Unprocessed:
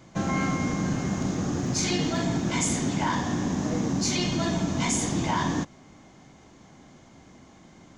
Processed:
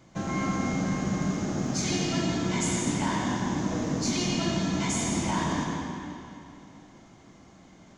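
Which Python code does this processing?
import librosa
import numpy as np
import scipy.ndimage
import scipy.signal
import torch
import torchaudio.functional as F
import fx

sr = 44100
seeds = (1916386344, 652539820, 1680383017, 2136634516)

y = fx.rev_freeverb(x, sr, rt60_s=2.7, hf_ratio=0.85, predelay_ms=50, drr_db=-0.5)
y = y * librosa.db_to_amplitude(-4.5)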